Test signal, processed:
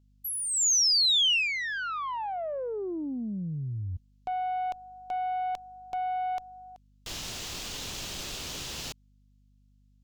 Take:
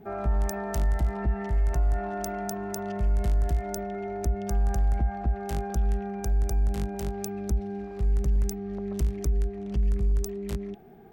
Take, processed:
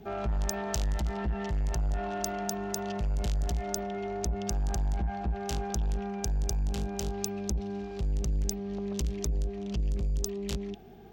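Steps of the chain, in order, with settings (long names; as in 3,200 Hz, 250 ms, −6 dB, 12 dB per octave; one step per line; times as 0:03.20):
tube saturation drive 25 dB, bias 0.2
mains hum 50 Hz, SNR 28 dB
flat-topped bell 4,400 Hz +10 dB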